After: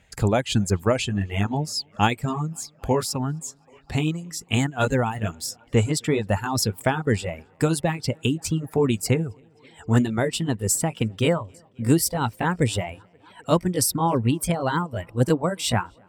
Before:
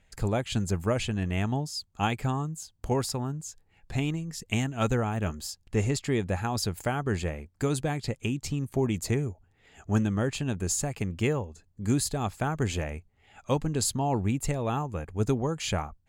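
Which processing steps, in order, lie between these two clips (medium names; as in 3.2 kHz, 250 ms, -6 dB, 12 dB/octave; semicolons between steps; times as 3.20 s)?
pitch bend over the whole clip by +3 st starting unshifted; high-pass 54 Hz; tape echo 263 ms, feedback 79%, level -21 dB, low-pass 4.1 kHz; reverb removal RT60 1.2 s; trim +8 dB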